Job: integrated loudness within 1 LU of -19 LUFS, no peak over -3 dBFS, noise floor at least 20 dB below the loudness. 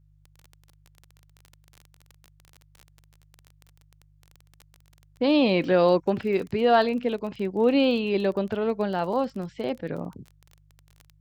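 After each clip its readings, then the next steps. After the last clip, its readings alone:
ticks 23/s; hum 50 Hz; harmonics up to 150 Hz; hum level -57 dBFS; loudness -24.5 LUFS; peak -8.5 dBFS; loudness target -19.0 LUFS
-> de-click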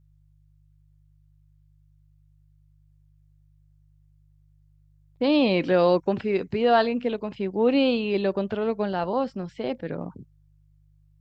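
ticks 0/s; hum 50 Hz; harmonics up to 150 Hz; hum level -57 dBFS
-> de-hum 50 Hz, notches 3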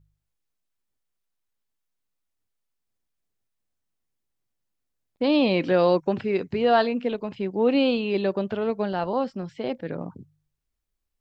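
hum none; loudness -24.0 LUFS; peak -8.5 dBFS; loudness target -19.0 LUFS
-> gain +5 dB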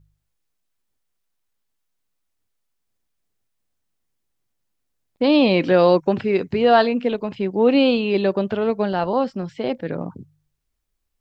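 loudness -19.0 LUFS; peak -3.5 dBFS; noise floor -75 dBFS

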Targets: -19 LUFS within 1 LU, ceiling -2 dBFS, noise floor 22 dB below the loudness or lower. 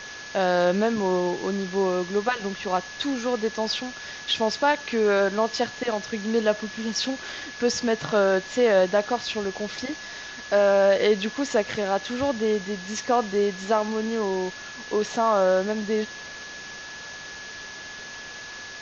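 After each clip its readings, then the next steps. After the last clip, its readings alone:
steady tone 1700 Hz; tone level -39 dBFS; noise floor -39 dBFS; noise floor target -47 dBFS; loudness -24.5 LUFS; peak -9.0 dBFS; loudness target -19.0 LUFS
-> notch 1700 Hz, Q 30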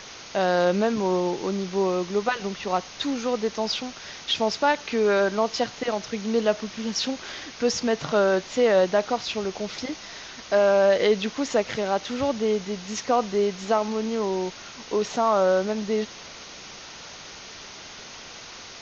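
steady tone none; noise floor -42 dBFS; noise floor target -47 dBFS
-> denoiser 6 dB, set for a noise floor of -42 dBFS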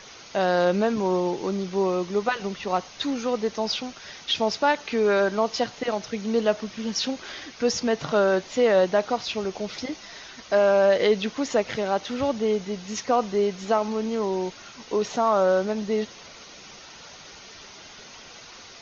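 noise floor -45 dBFS; noise floor target -47 dBFS
-> denoiser 6 dB, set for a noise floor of -45 dBFS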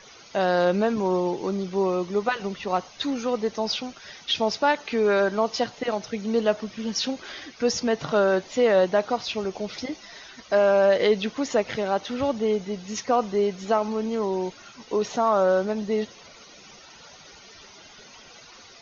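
noise floor -49 dBFS; loudness -24.5 LUFS; peak -9.0 dBFS; loudness target -19.0 LUFS
-> gain +5.5 dB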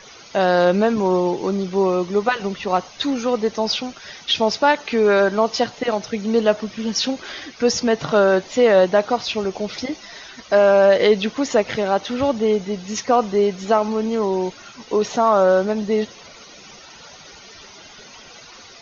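loudness -19.0 LUFS; peak -3.5 dBFS; noise floor -43 dBFS

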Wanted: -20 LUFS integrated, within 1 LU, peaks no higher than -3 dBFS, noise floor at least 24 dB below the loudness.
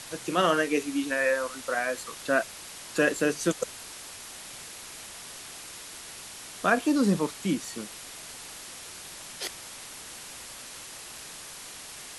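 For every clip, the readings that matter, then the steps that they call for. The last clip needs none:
noise floor -44 dBFS; noise floor target -55 dBFS; loudness -30.5 LUFS; peak -9.5 dBFS; loudness target -20.0 LUFS
-> noise print and reduce 11 dB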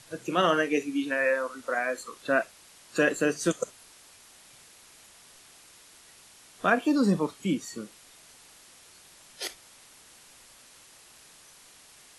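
noise floor -55 dBFS; loudness -28.0 LUFS; peak -9.5 dBFS; loudness target -20.0 LUFS
-> gain +8 dB; limiter -3 dBFS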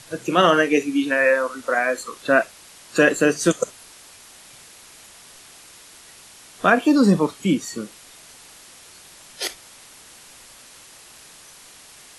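loudness -20.0 LUFS; peak -3.0 dBFS; noise floor -47 dBFS

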